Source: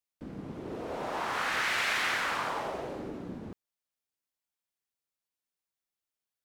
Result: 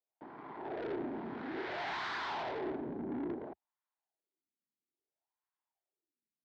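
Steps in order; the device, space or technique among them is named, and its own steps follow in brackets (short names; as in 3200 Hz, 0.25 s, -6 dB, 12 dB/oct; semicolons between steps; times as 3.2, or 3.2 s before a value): 2.56–3.34 doubler 29 ms -7 dB; wah-wah guitar rig (wah 0.59 Hz 210–1100 Hz, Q 3.7; tube stage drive 50 dB, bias 0.65; speaker cabinet 87–4400 Hz, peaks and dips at 89 Hz -9 dB, 200 Hz -7 dB, 370 Hz +4 dB, 520 Hz -9 dB, 1200 Hz -8 dB, 2700 Hz -5 dB); gain +16 dB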